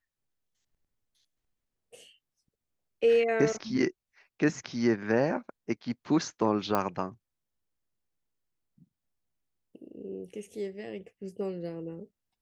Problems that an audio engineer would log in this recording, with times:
6.75 s: pop -14 dBFS

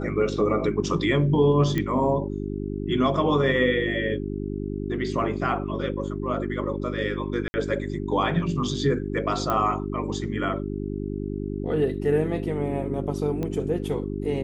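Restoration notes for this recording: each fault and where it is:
hum 50 Hz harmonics 8 -30 dBFS
1.78 s: pop -13 dBFS
7.48–7.54 s: dropout 60 ms
9.50 s: pop -12 dBFS
13.43 s: pop -18 dBFS

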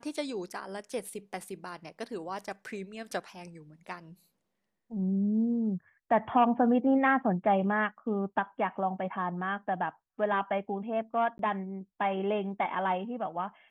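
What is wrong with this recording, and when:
11.38–11.39 s: dropout 12 ms

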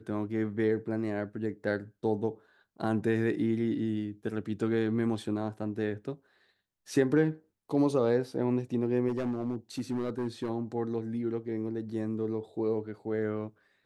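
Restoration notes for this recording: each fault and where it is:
9.08–10.50 s: clipped -27 dBFS

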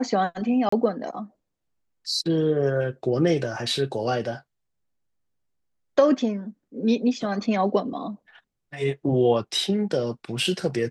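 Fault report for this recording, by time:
0.69–0.72 s: dropout 34 ms

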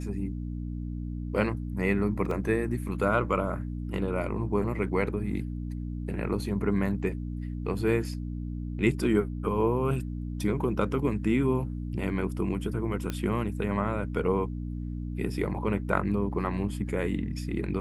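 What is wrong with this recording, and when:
hum 60 Hz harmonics 5 -34 dBFS
2.31 s: dropout 3 ms
13.10 s: pop -17 dBFS

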